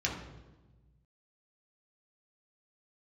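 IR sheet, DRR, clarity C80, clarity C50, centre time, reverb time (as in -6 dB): -3.5 dB, 7.5 dB, 5.0 dB, 38 ms, 1.2 s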